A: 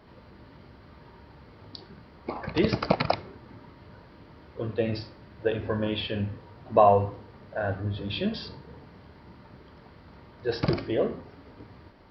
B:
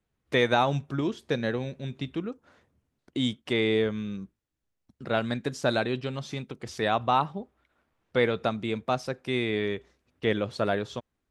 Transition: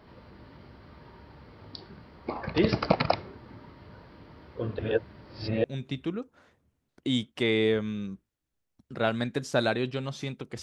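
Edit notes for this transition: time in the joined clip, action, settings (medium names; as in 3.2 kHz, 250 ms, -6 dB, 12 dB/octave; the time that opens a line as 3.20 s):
A
4.79–5.64 s: reverse
5.64 s: go over to B from 1.74 s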